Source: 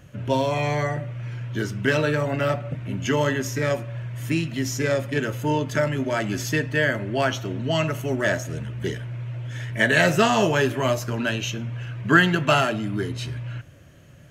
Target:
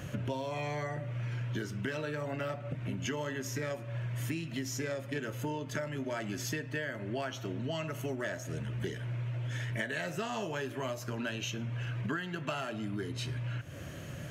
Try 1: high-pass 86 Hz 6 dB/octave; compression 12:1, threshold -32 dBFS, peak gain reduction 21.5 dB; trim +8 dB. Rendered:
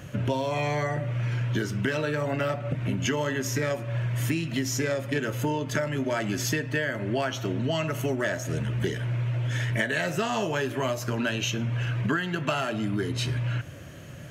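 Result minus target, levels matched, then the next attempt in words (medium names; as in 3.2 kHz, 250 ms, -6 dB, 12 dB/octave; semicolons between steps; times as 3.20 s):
compression: peak gain reduction -8.5 dB
high-pass 86 Hz 6 dB/octave; compression 12:1, threshold -41.5 dBFS, peak gain reduction 30 dB; trim +8 dB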